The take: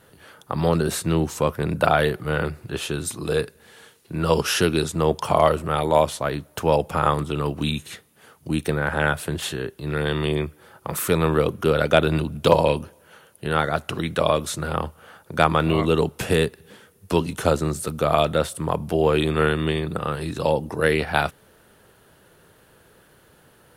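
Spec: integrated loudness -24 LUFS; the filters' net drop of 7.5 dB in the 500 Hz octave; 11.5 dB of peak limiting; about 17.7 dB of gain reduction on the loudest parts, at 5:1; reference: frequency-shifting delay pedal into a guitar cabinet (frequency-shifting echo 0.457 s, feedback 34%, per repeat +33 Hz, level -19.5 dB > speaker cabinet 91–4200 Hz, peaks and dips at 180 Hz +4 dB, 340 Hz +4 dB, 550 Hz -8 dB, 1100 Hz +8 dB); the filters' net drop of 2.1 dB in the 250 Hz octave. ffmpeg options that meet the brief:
-filter_complex "[0:a]equalizer=f=250:t=o:g=-5,equalizer=f=500:t=o:g=-5.5,acompressor=threshold=-36dB:ratio=5,alimiter=level_in=5dB:limit=-24dB:level=0:latency=1,volume=-5dB,asplit=4[a][b][c][d];[b]adelay=457,afreqshift=33,volume=-19.5dB[e];[c]adelay=914,afreqshift=66,volume=-28.9dB[f];[d]adelay=1371,afreqshift=99,volume=-38.2dB[g];[a][e][f][g]amix=inputs=4:normalize=0,highpass=91,equalizer=f=180:t=q:w=4:g=4,equalizer=f=340:t=q:w=4:g=4,equalizer=f=550:t=q:w=4:g=-8,equalizer=f=1.1k:t=q:w=4:g=8,lowpass=f=4.2k:w=0.5412,lowpass=f=4.2k:w=1.3066,volume=17dB"

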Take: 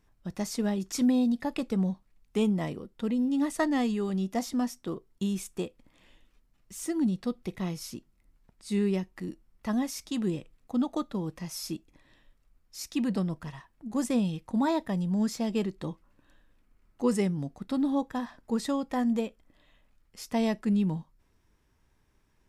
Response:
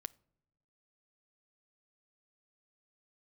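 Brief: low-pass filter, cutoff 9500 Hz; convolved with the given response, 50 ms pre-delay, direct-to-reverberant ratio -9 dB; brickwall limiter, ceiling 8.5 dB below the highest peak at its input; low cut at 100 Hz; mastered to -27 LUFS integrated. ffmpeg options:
-filter_complex "[0:a]highpass=100,lowpass=9.5k,alimiter=limit=-23.5dB:level=0:latency=1,asplit=2[a][b];[1:a]atrim=start_sample=2205,adelay=50[c];[b][c]afir=irnorm=-1:irlink=0,volume=13dB[d];[a][d]amix=inputs=2:normalize=0,volume=-3.5dB"

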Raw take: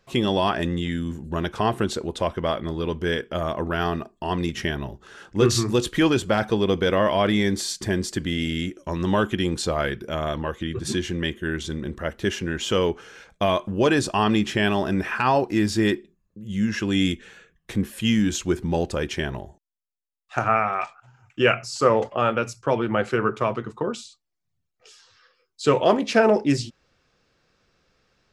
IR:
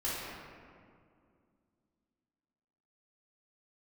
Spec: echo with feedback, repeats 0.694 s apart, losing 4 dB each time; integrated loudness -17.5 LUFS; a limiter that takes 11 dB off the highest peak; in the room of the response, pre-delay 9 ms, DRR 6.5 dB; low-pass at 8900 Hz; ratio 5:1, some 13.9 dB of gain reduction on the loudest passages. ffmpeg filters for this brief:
-filter_complex "[0:a]lowpass=8.9k,acompressor=threshold=-29dB:ratio=5,alimiter=limit=-23.5dB:level=0:latency=1,aecho=1:1:694|1388|2082|2776|3470|4164|4858|5552|6246:0.631|0.398|0.25|0.158|0.0994|0.0626|0.0394|0.0249|0.0157,asplit=2[a][b];[1:a]atrim=start_sample=2205,adelay=9[c];[b][c]afir=irnorm=-1:irlink=0,volume=-12.5dB[d];[a][d]amix=inputs=2:normalize=0,volume=14.5dB"

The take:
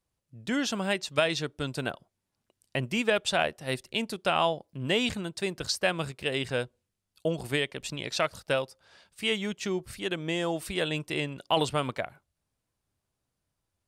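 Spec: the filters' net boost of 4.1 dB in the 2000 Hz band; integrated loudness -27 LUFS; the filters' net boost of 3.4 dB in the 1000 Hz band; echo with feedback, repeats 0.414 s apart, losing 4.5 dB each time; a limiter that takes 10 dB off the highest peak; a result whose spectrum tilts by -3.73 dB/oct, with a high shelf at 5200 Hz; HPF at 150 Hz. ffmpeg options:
-af "highpass=150,equalizer=f=1k:t=o:g=3.5,equalizer=f=2k:t=o:g=5,highshelf=f=5.2k:g=-3.5,alimiter=limit=-15.5dB:level=0:latency=1,aecho=1:1:414|828|1242|1656|2070|2484|2898|3312|3726:0.596|0.357|0.214|0.129|0.0772|0.0463|0.0278|0.0167|0.01,volume=2.5dB"

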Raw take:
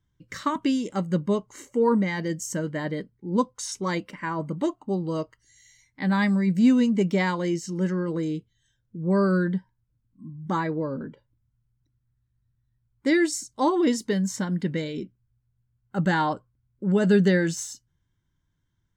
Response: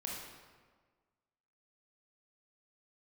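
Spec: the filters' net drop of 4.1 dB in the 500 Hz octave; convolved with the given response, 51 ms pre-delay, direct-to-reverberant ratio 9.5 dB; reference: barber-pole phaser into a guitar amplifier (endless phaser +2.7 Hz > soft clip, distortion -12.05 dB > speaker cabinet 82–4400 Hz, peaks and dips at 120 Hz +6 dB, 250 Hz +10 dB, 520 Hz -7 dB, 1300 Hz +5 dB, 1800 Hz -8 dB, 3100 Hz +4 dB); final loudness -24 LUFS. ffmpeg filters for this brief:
-filter_complex "[0:a]equalizer=f=500:t=o:g=-4,asplit=2[a][b];[1:a]atrim=start_sample=2205,adelay=51[c];[b][c]afir=irnorm=-1:irlink=0,volume=-10dB[d];[a][d]amix=inputs=2:normalize=0,asplit=2[e][f];[f]afreqshift=2.7[g];[e][g]amix=inputs=2:normalize=1,asoftclip=threshold=-23dB,highpass=82,equalizer=f=120:t=q:w=4:g=6,equalizer=f=250:t=q:w=4:g=10,equalizer=f=520:t=q:w=4:g=-7,equalizer=f=1.3k:t=q:w=4:g=5,equalizer=f=1.8k:t=q:w=4:g=-8,equalizer=f=3.1k:t=q:w=4:g=4,lowpass=f=4.4k:w=0.5412,lowpass=f=4.4k:w=1.3066,volume=4.5dB"

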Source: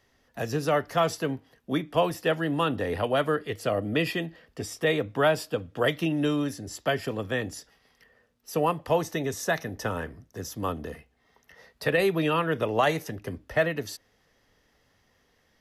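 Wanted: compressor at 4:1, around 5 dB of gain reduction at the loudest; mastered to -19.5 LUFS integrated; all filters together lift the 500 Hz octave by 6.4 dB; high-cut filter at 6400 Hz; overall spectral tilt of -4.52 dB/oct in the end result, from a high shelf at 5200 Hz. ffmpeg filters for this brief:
-af "lowpass=6.4k,equalizer=f=500:t=o:g=7.5,highshelf=f=5.2k:g=6.5,acompressor=threshold=-19dB:ratio=4,volume=7dB"

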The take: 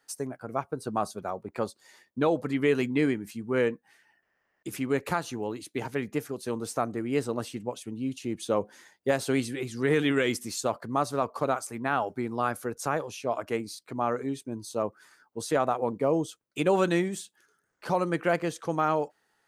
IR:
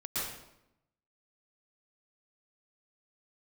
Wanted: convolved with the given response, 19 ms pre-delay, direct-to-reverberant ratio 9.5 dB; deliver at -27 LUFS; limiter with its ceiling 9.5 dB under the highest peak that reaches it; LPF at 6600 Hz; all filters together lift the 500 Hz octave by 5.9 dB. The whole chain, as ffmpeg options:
-filter_complex "[0:a]lowpass=6.6k,equalizer=f=500:t=o:g=7,alimiter=limit=-18dB:level=0:latency=1,asplit=2[a][b];[1:a]atrim=start_sample=2205,adelay=19[c];[b][c]afir=irnorm=-1:irlink=0,volume=-14.5dB[d];[a][d]amix=inputs=2:normalize=0,volume=2.5dB"

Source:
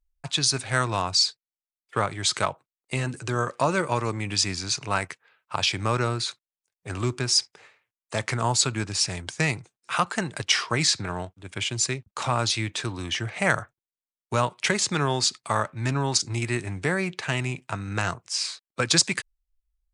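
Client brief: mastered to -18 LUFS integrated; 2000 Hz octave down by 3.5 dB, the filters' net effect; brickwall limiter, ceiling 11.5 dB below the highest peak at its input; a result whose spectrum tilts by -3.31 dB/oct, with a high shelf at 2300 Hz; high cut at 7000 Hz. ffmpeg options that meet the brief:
-af "lowpass=7k,equalizer=f=2k:t=o:g=-7.5,highshelf=f=2.3k:g=5.5,volume=10dB,alimiter=limit=-5dB:level=0:latency=1"

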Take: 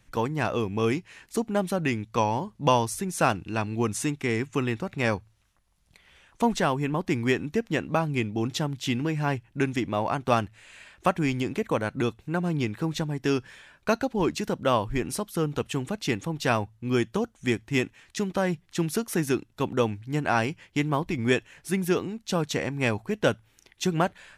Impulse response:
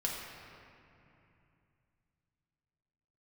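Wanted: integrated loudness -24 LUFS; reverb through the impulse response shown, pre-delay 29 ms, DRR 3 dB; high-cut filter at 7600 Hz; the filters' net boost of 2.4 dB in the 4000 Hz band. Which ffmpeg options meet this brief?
-filter_complex "[0:a]lowpass=7.6k,equalizer=f=4k:t=o:g=3.5,asplit=2[a][b];[1:a]atrim=start_sample=2205,adelay=29[c];[b][c]afir=irnorm=-1:irlink=0,volume=-7dB[d];[a][d]amix=inputs=2:normalize=0,volume=2dB"

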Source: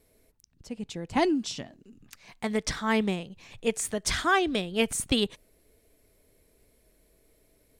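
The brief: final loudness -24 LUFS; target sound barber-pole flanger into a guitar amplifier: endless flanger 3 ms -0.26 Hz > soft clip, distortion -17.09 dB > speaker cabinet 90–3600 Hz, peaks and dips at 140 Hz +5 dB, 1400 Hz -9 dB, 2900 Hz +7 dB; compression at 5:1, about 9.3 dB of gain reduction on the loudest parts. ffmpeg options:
-filter_complex "[0:a]acompressor=threshold=-30dB:ratio=5,asplit=2[a][b];[b]adelay=3,afreqshift=-0.26[c];[a][c]amix=inputs=2:normalize=1,asoftclip=threshold=-28dB,highpass=90,equalizer=f=140:t=q:w=4:g=5,equalizer=f=1.4k:t=q:w=4:g=-9,equalizer=f=2.9k:t=q:w=4:g=7,lowpass=f=3.6k:w=0.5412,lowpass=f=3.6k:w=1.3066,volume=16dB"

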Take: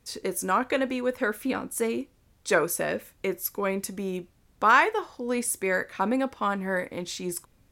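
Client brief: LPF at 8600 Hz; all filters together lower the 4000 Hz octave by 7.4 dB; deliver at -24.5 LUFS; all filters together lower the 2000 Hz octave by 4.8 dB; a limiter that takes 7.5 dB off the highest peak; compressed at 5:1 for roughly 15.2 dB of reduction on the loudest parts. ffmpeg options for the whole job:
-af "lowpass=8.6k,equalizer=f=2k:t=o:g=-5,equalizer=f=4k:t=o:g=-8,acompressor=threshold=-34dB:ratio=5,volume=15.5dB,alimiter=limit=-13.5dB:level=0:latency=1"

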